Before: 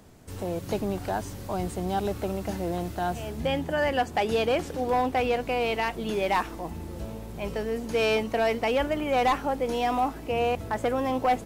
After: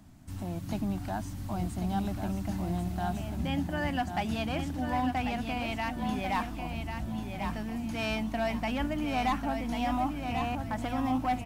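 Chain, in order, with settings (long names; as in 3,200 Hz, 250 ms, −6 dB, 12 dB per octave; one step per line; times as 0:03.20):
drawn EQ curve 290 Hz 0 dB, 460 Hz −23 dB, 660 Hz −6 dB
repeating echo 1,093 ms, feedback 30%, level −6.5 dB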